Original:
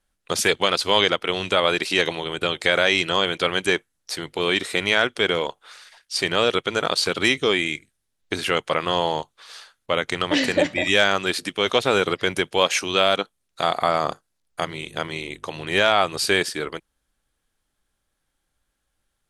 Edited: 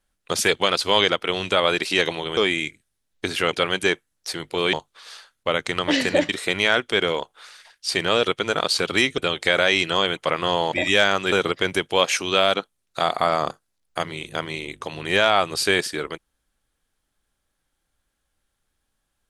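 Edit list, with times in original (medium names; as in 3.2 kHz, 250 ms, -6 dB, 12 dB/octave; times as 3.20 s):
2.37–3.36 s: swap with 7.45–8.61 s
9.16–10.72 s: move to 4.56 s
11.32–11.94 s: delete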